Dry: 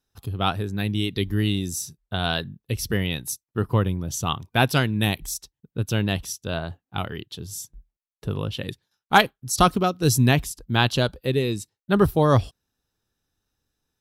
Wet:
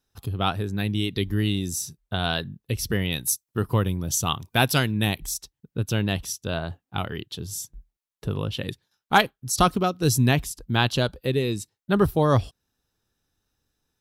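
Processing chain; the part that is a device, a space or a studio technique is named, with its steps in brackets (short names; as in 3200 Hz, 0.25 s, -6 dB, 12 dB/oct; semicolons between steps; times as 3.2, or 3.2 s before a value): 3.12–4.92 high shelf 4400 Hz +8.5 dB; parallel compression (in parallel at -2.5 dB: compressor, threshold -29 dBFS, peak gain reduction 18 dB); on the sum: gain -3 dB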